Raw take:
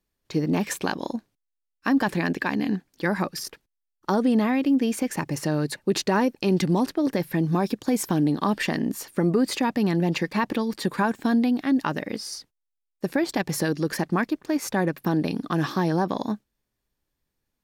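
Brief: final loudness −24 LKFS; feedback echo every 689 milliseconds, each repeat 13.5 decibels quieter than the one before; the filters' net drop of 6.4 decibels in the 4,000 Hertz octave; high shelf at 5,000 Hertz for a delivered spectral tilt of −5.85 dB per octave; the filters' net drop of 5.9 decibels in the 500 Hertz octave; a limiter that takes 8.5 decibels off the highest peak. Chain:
parametric band 500 Hz −8 dB
parametric band 4,000 Hz −4.5 dB
high-shelf EQ 5,000 Hz −7.5 dB
brickwall limiter −21 dBFS
repeating echo 689 ms, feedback 21%, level −13.5 dB
level +7 dB

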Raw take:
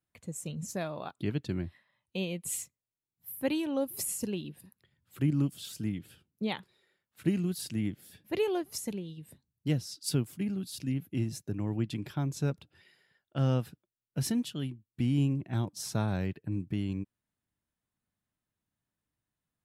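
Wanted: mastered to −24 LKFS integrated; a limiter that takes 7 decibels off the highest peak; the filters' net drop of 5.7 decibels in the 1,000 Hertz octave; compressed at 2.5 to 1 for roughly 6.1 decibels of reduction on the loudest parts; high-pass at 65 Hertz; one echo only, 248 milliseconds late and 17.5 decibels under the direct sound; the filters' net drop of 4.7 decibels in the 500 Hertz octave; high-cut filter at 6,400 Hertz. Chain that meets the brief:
high-pass filter 65 Hz
low-pass filter 6,400 Hz
parametric band 500 Hz −5 dB
parametric band 1,000 Hz −6 dB
downward compressor 2.5 to 1, threshold −33 dBFS
brickwall limiter −29.5 dBFS
single-tap delay 248 ms −17.5 dB
level +16.5 dB

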